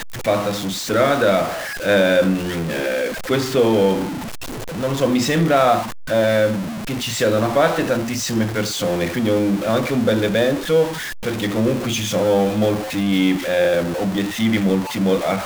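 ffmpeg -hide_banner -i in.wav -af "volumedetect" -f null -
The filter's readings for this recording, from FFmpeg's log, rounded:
mean_volume: -18.8 dB
max_volume: -3.8 dB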